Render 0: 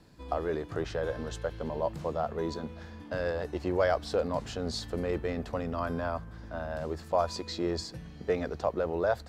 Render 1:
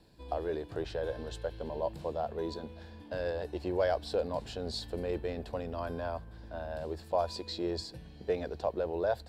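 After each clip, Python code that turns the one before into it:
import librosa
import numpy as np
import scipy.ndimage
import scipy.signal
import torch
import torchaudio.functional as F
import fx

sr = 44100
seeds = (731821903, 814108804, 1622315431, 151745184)

y = fx.graphic_eq_31(x, sr, hz=(100, 160, 250, 1250, 2000, 4000, 6300), db=(-4, -6, -5, -11, -6, 3, -8))
y = y * 10.0 ** (-2.0 / 20.0)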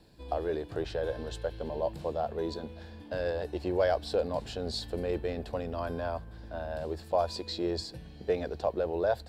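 y = fx.notch(x, sr, hz=970.0, q=25.0)
y = y * 10.0 ** (2.5 / 20.0)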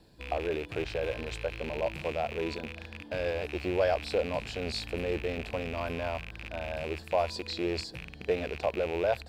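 y = fx.rattle_buzz(x, sr, strikes_db=-44.0, level_db=-28.0)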